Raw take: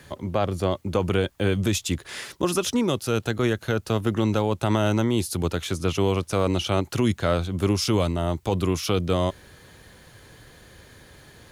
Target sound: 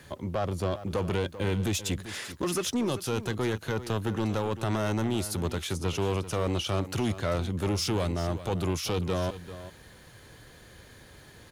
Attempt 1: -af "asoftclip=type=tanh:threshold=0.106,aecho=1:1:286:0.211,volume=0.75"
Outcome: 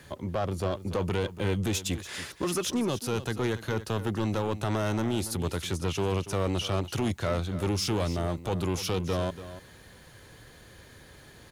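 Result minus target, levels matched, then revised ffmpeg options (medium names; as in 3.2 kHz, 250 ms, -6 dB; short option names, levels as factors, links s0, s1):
echo 105 ms early
-af "asoftclip=type=tanh:threshold=0.106,aecho=1:1:391:0.211,volume=0.75"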